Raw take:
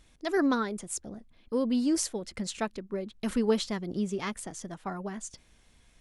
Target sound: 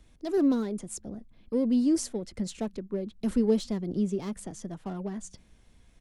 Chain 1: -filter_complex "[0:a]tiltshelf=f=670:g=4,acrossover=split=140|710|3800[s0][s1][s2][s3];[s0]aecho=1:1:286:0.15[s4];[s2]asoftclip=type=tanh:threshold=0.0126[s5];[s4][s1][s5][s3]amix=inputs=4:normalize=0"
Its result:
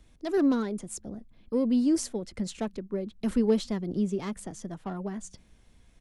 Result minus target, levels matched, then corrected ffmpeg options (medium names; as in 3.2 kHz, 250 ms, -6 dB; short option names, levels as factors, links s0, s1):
saturation: distortion -6 dB
-filter_complex "[0:a]tiltshelf=f=670:g=4,acrossover=split=140|710|3800[s0][s1][s2][s3];[s0]aecho=1:1:286:0.15[s4];[s2]asoftclip=type=tanh:threshold=0.00398[s5];[s4][s1][s5][s3]amix=inputs=4:normalize=0"